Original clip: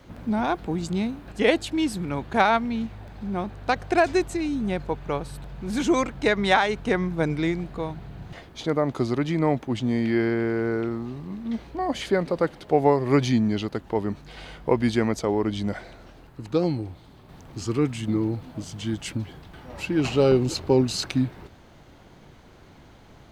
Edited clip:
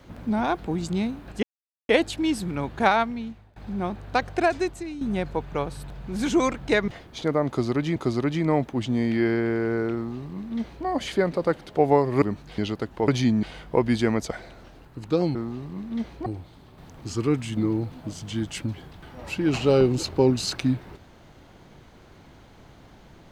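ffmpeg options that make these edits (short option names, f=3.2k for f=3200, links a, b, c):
-filter_complex "[0:a]asplit=13[a][b][c][d][e][f][g][h][i][j][k][l][m];[a]atrim=end=1.43,asetpts=PTS-STARTPTS,afade=t=out:st=1.426:d=0.004:c=hsin,apad=pad_dur=0.46[n];[b]atrim=start=1.43:end=3.1,asetpts=PTS-STARTPTS,afade=t=in:d=0.004:c=hsin,afade=t=out:st=0.98:d=0.69:silence=0.0794328[o];[c]atrim=start=3.1:end=4.55,asetpts=PTS-STARTPTS,afade=t=in:d=0.004:c=hsin:silence=0.0794328,afade=t=out:st=0.66:d=0.79:silence=0.316228[p];[d]atrim=start=4.55:end=6.422,asetpts=PTS-STARTPTS,afade=t=in:d=0.004:c=hsin:silence=0.316228[q];[e]atrim=start=8.298:end=9.382[r];[f]atrim=start=8.898:end=13.162[s];[g]atrim=start=14.008:end=14.372[t];[h]atrim=start=13.508:end=14.012[u];[i]atrim=start=13.158:end=13.512[v];[j]atrim=start=14.368:end=15.252[w];[k]atrim=start=15.728:end=16.772[x];[l]atrim=start=10.888:end=11.802[y];[m]atrim=start=16.768[z];[n][o][p][q]concat=n=4:v=0:a=1[aa];[aa][r]acrossfade=d=0.004:c1=hsin:c2=hsin[ab];[ab][s]acrossfade=d=0.004:c1=hsin:c2=hsin[ac];[ac][t]acrossfade=d=0.004:c1=hsin:c2=hsin[ad];[ad][u]acrossfade=d=0.004:c1=hsin:c2=hsin[ae];[ae][v]acrossfade=d=0.004:c1=hsin:c2=hsin[af];[af][w]acrossfade=d=0.004:c1=hsin:c2=hsin[ag];[ag][x]acrossfade=d=0.004:c1=hsin:c2=hsin[ah];[ah][y]acrossfade=d=0.004:c1=hsin:c2=hsin[ai];[ai][z]acrossfade=d=0.004:c1=hsin:c2=hsin"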